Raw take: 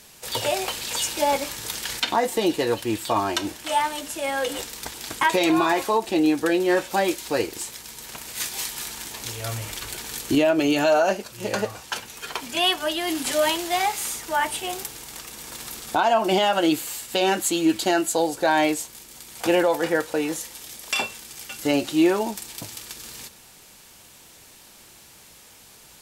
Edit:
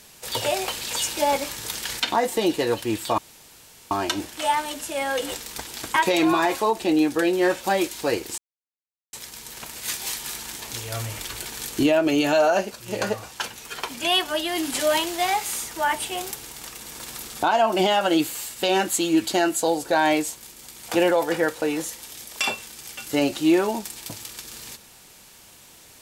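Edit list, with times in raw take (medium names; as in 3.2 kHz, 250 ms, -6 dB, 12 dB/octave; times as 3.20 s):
3.18 s: insert room tone 0.73 s
7.65 s: insert silence 0.75 s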